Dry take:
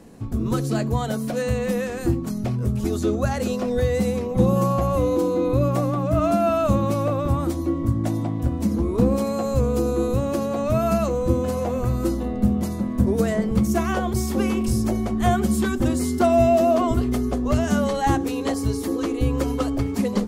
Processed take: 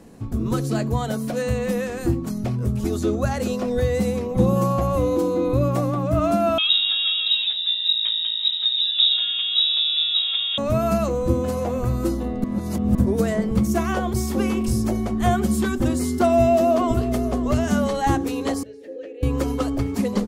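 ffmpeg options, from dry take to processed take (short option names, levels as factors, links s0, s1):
-filter_complex "[0:a]asettb=1/sr,asplit=3[s0][s1][s2];[s0]atrim=end=6.584[s3];[s1]atrim=start=6.58:end=10.58,asetpts=PTS-STARTPTS,afade=t=in:d=0.004:c=qsin,afade=t=out:st=3.996:d=0.004:c=qsin,lowpass=f=3300:t=q:w=0.5098,lowpass=f=3300:t=q:w=0.6013,lowpass=f=3300:t=q:w=0.9,lowpass=f=3300:t=q:w=2.563,afreqshift=-3900[s4];[s2]atrim=start=10.576[s5];[s3][s4]acrossfade=d=0.004:c1=hsin:c2=qsin[s6];[s6][s5]acrossfade=d=0.004:c1=qsin:c2=hsin,asplit=2[s7][s8];[s8]afade=t=in:st=16.34:d=0.01,afade=t=out:st=17.34:d=0.01,aecho=0:1:550|1100:0.211349|0.0211349[s9];[s7][s9]amix=inputs=2:normalize=0,asettb=1/sr,asplit=3[s10][s11][s12];[s10]atrim=end=18.634[s13];[s11]atrim=start=18.63:end=19.23,asetpts=PTS-STARTPTS,afade=t=in:d=0.004:c=qsin,afade=t=out:st=0.596:d=0.004:c=qsin,asplit=3[s14][s15][s16];[s14]bandpass=f=530:t=q:w=8,volume=1[s17];[s15]bandpass=f=1840:t=q:w=8,volume=0.501[s18];[s16]bandpass=f=2480:t=q:w=8,volume=0.355[s19];[s17][s18][s19]amix=inputs=3:normalize=0[s20];[s12]atrim=start=19.226[s21];[s13][s20]acrossfade=d=0.004:c1=hsin:c2=qsin[s22];[s22][s21]acrossfade=d=0.004:c1=qsin:c2=hsin,asplit=3[s23][s24][s25];[s23]atrim=end=12.442[s26];[s24]atrim=start=12.438:end=12.952,asetpts=PTS-STARTPTS,areverse[s27];[s25]atrim=start=12.948[s28];[s26][s27]acrossfade=d=0.004:c1=hsin:c2=hsin[s29];[s29][s28]acrossfade=d=0.004:c1=hsin:c2=hsin"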